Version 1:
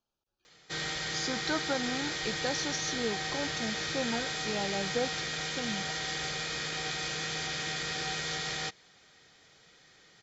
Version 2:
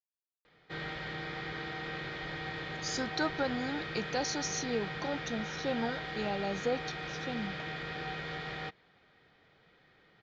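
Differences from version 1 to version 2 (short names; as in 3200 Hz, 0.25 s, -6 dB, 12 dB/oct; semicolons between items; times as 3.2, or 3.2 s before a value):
speech: entry +1.70 s; background: add air absorption 400 m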